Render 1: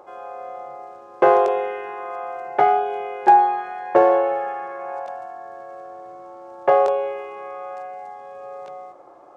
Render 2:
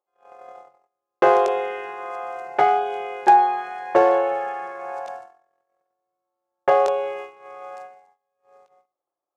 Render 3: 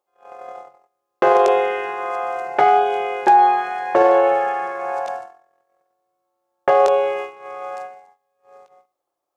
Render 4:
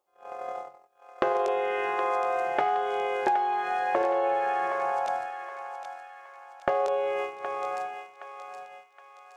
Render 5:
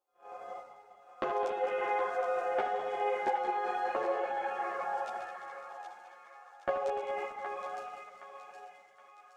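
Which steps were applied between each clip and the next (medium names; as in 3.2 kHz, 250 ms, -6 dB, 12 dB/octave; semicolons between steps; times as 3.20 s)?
gate -32 dBFS, range -40 dB; treble shelf 2.6 kHz +10.5 dB; trim -2 dB
peak limiter -12.5 dBFS, peak gain reduction 8.5 dB; trim +7 dB
compression 6:1, threshold -24 dBFS, peak gain reduction 14 dB; thinning echo 769 ms, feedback 50%, high-pass 900 Hz, level -7 dB
backward echo that repeats 105 ms, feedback 81%, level -9 dB; three-phase chorus; trim -4.5 dB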